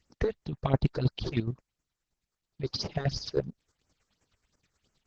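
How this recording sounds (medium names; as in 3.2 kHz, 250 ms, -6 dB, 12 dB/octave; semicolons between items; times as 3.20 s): chopped level 9.5 Hz, depth 65%, duty 30%; phasing stages 6, 2.9 Hz, lowest notch 180–3800 Hz; Opus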